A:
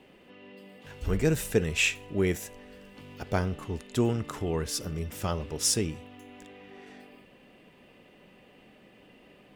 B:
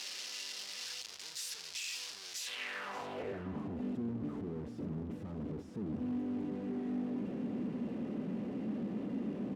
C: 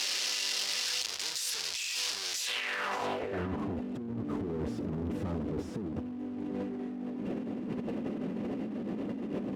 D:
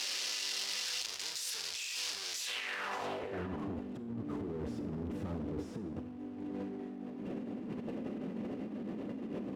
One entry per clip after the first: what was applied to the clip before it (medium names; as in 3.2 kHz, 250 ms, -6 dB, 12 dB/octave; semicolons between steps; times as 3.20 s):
one-bit comparator; band-pass sweep 5 kHz -> 230 Hz, 2.36–3.49 s; echo from a far wall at 100 m, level -10 dB; trim +1 dB
peaking EQ 160 Hz -5 dB 0.9 oct; compressor with a negative ratio -44 dBFS, ratio -1; trim +9 dB
Schroeder reverb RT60 0.82 s, combs from 27 ms, DRR 10.5 dB; trim -5 dB